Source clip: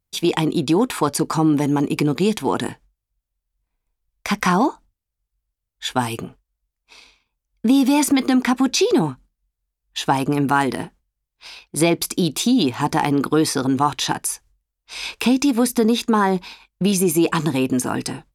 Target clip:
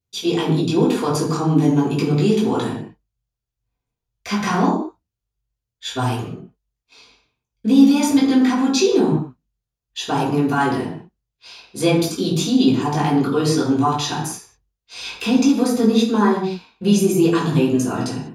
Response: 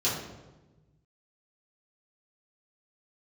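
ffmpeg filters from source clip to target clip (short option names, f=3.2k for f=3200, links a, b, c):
-filter_complex "[1:a]atrim=start_sample=2205,afade=t=out:st=0.26:d=0.01,atrim=end_sample=11907[a];[0:a][a]afir=irnorm=-1:irlink=0,volume=-11.5dB"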